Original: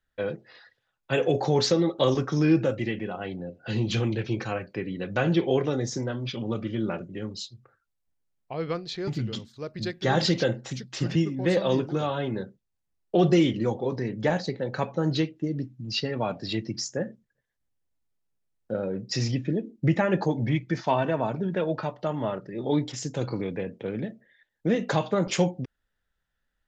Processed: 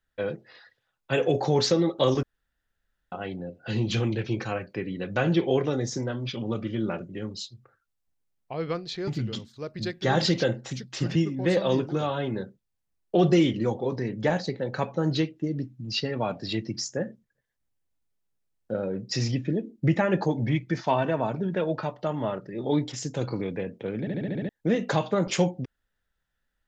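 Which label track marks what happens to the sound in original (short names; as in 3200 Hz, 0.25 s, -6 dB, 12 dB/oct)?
2.230000	3.120000	room tone
24.000000	24.000000	stutter in place 0.07 s, 7 plays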